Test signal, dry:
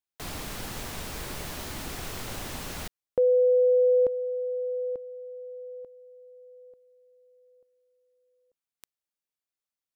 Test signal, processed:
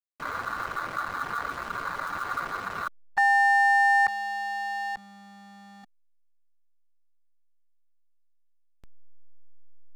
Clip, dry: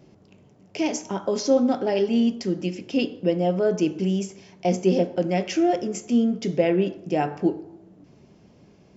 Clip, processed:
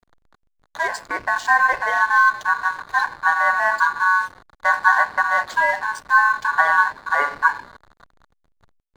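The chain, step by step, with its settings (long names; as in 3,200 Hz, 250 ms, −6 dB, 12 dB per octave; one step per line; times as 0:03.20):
spectral magnitudes quantised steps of 30 dB
parametric band 120 Hz +13.5 dB 2.2 octaves
ring modulation 1,300 Hz
slack as between gear wheels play −32 dBFS
level +1.5 dB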